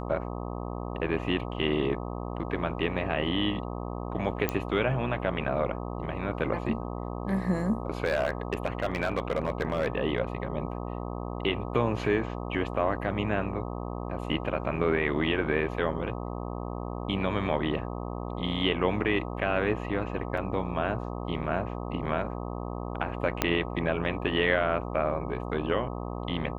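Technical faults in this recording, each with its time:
buzz 60 Hz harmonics 21 -35 dBFS
4.49 pop -12 dBFS
8.04–9.88 clipped -21 dBFS
20.37 gap 4.7 ms
23.42 pop -8 dBFS

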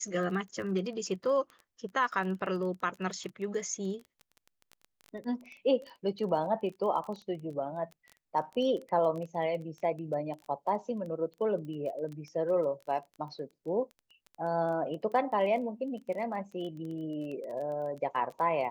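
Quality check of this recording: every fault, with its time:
crackle 19/s -38 dBFS

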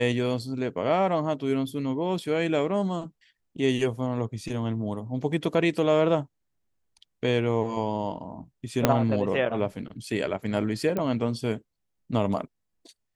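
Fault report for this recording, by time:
8.85 pop -4 dBFS
10.97 pop -16 dBFS

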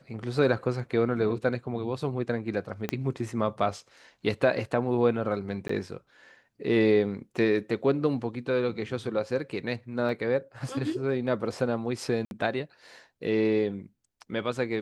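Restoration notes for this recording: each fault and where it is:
2.89 pop -14 dBFS
5.68–5.69 gap 14 ms
10.09 gap 2.7 ms
12.25–12.31 gap 61 ms

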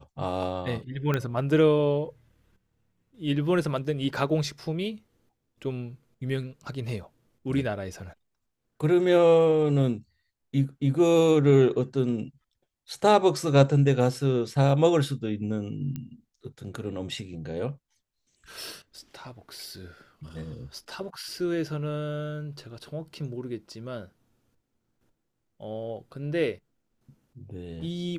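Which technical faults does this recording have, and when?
1.14 pop -14 dBFS
15.96 pop -22 dBFS

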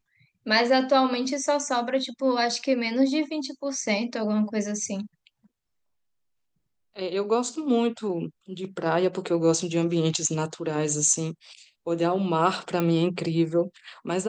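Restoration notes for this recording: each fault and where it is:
12.8 pop -13 dBFS

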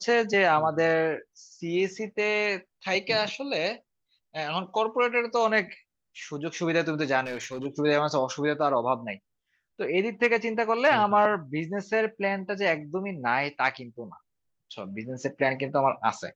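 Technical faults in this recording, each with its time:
7.25–7.66 clipped -29 dBFS

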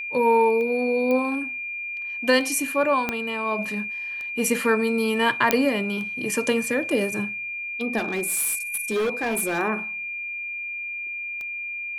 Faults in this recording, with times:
tick 33 1/3 rpm -23 dBFS
tone 2400 Hz -29 dBFS
1.11 pop -15 dBFS
3.09 pop -10 dBFS
5.51 pop -2 dBFS
7.97–9.59 clipped -20.5 dBFS

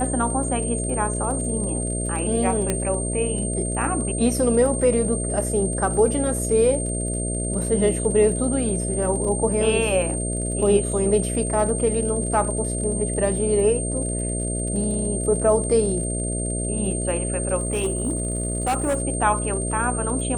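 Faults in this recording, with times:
buzz 60 Hz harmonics 11 -27 dBFS
crackle 52/s -32 dBFS
tone 8700 Hz -28 dBFS
2.7 pop -8 dBFS
17.57–19 clipped -18 dBFS

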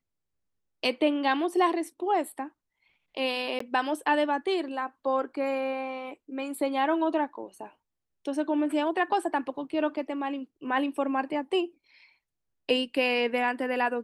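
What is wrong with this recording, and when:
3.59–3.6 gap 14 ms

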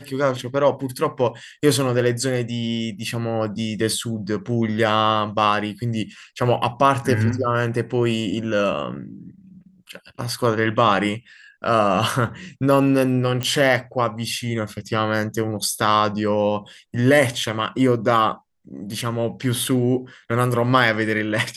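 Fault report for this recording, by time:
13.43 pop -10 dBFS

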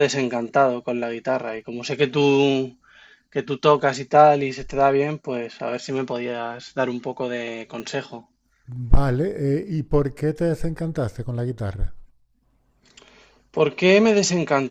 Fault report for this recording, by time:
7.8 pop -19 dBFS

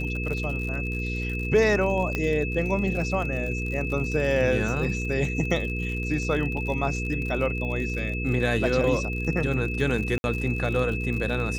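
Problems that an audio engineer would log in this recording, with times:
crackle 62/s -32 dBFS
hum 60 Hz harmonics 8 -30 dBFS
tone 2600 Hz -32 dBFS
2.15 pop -14 dBFS
6.57 gap 4.2 ms
10.18–10.24 gap 61 ms

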